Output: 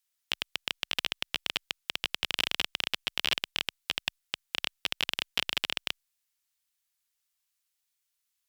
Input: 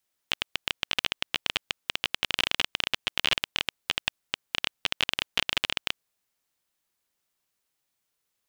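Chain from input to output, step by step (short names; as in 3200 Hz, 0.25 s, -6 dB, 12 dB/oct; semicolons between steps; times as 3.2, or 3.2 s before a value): passive tone stack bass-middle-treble 10-0-10; added harmonics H 4 -20 dB, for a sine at -10 dBFS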